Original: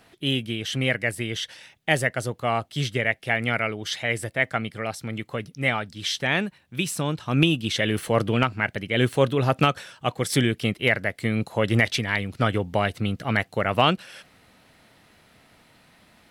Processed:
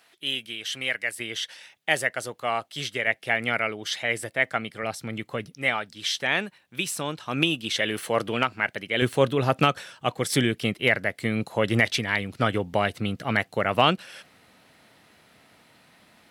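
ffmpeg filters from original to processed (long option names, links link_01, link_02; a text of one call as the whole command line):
ffmpeg -i in.wav -af "asetnsamples=nb_out_samples=441:pad=0,asendcmd='1.2 highpass f 620;3.07 highpass f 290;4.83 highpass f 130;5.54 highpass f 440;9.02 highpass f 140',highpass=frequency=1400:poles=1" out.wav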